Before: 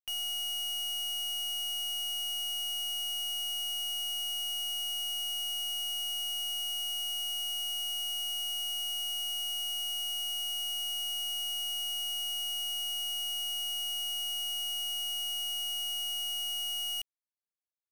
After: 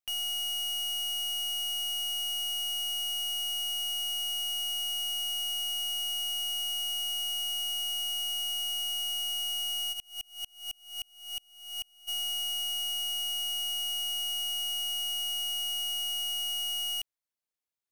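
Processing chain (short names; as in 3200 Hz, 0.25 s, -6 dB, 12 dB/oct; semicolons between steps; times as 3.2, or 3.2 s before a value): 9.92–12.07 dB-ramp tremolo swelling 5.2 Hz -> 1.8 Hz, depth 36 dB; gain +2 dB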